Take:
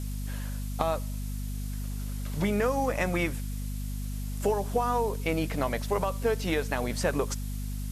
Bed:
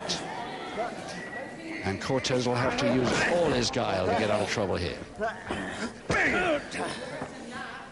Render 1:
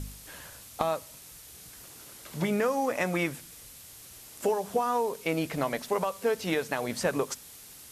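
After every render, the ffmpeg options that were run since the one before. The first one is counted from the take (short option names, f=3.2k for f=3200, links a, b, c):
-af "bandreject=f=50:t=h:w=4,bandreject=f=100:t=h:w=4,bandreject=f=150:t=h:w=4,bandreject=f=200:t=h:w=4,bandreject=f=250:t=h:w=4"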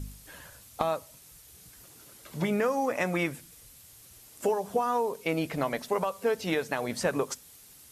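-af "afftdn=nr=6:nf=-49"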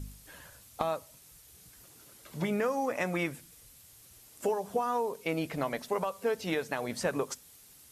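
-af "volume=-3dB"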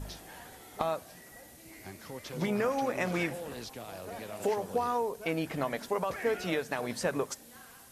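-filter_complex "[1:a]volume=-16dB[a];[0:a][a]amix=inputs=2:normalize=0"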